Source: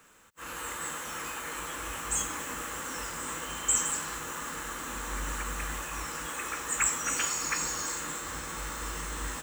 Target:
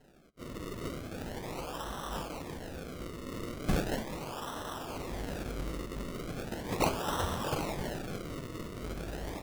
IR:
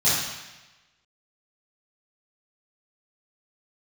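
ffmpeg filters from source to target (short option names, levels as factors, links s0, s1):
-filter_complex "[0:a]asettb=1/sr,asplit=3[s0][s1][s2];[s0]atrim=end=2.084[s3];[s1]atrim=start=2.08:end=3.32,asetpts=PTS-STARTPTS,afade=t=in:d=0.004:c=qsin,afade=t=out:st=1.236:d=0.004:c=qsin,highshelf=f=3800:g=-10[s4];[s2]atrim=start=3.316[s5];[s3][s4]acrossfade=d=0.004:c1=hsin:c2=qsin[s6];[s6][s5]acrossfade=d=0.004:c1=qsin:c2=hsin,asettb=1/sr,asplit=3[s7][s8][s9];[s7]atrim=end=8.344[s10];[s8]atrim=start=8.34:end=8.84,asetpts=PTS-STARTPTS,afade=t=in:d=0.004:c=qsin,afade=t=out:st=0.496:d=0.004:c=qsin,highpass=610[s11];[s9]atrim=start=8.836[s12];[s10][s11]acrossfade=d=0.004:c1=hsin:c2=qsin[s13];[s13][s12]acrossfade=d=0.004:c1=qsin:c2=hsin,acrusher=samples=37:mix=1:aa=0.000001:lfo=1:lforange=37:lforate=0.38,flanger=delay=5.1:depth=6.9:regen=-63:speed=0.5:shape=sinusoidal,volume=1.26"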